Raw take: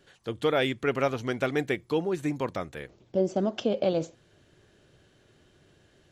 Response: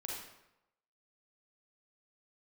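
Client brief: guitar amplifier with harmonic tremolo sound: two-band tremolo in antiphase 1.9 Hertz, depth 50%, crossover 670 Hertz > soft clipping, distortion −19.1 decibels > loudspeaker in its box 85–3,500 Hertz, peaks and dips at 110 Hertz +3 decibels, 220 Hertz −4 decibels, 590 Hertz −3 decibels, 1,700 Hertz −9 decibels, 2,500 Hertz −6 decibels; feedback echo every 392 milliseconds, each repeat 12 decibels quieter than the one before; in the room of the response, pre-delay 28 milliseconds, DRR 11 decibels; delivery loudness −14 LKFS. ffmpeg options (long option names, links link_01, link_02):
-filter_complex "[0:a]aecho=1:1:392|784|1176:0.251|0.0628|0.0157,asplit=2[link_01][link_02];[1:a]atrim=start_sample=2205,adelay=28[link_03];[link_02][link_03]afir=irnorm=-1:irlink=0,volume=-10.5dB[link_04];[link_01][link_04]amix=inputs=2:normalize=0,acrossover=split=670[link_05][link_06];[link_05]aeval=exprs='val(0)*(1-0.5/2+0.5/2*cos(2*PI*1.9*n/s))':channel_layout=same[link_07];[link_06]aeval=exprs='val(0)*(1-0.5/2-0.5/2*cos(2*PI*1.9*n/s))':channel_layout=same[link_08];[link_07][link_08]amix=inputs=2:normalize=0,asoftclip=threshold=-18.5dB,highpass=85,equalizer=frequency=110:width_type=q:width=4:gain=3,equalizer=frequency=220:width_type=q:width=4:gain=-4,equalizer=frequency=590:width_type=q:width=4:gain=-3,equalizer=frequency=1700:width_type=q:width=4:gain=-9,equalizer=frequency=2500:width_type=q:width=4:gain=-6,lowpass=frequency=3500:width=0.5412,lowpass=frequency=3500:width=1.3066,volume=19.5dB"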